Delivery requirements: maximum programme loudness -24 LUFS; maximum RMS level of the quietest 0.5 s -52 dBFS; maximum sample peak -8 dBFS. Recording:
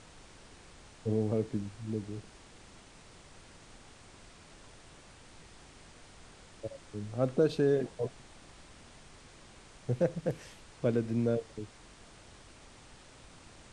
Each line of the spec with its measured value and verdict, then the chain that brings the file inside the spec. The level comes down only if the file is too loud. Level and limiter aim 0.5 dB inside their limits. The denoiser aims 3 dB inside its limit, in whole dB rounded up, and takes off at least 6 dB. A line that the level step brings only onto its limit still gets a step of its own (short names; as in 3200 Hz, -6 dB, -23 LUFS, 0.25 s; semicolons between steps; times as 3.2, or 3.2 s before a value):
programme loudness -33.5 LUFS: OK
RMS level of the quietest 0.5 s -55 dBFS: OK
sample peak -15.5 dBFS: OK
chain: none